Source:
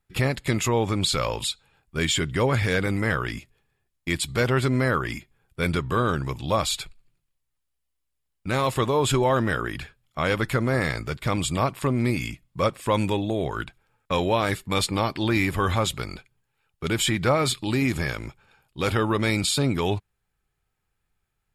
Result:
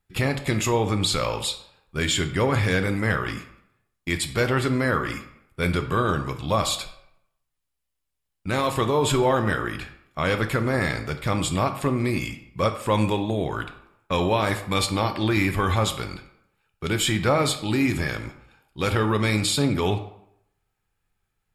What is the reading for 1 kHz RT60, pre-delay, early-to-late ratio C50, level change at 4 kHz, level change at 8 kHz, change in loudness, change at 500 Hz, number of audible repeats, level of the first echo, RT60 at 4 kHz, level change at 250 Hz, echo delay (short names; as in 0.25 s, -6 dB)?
0.75 s, 9 ms, 10.5 dB, +0.5 dB, +0.5 dB, +0.5 dB, +0.5 dB, none, none, 0.50 s, +1.0 dB, none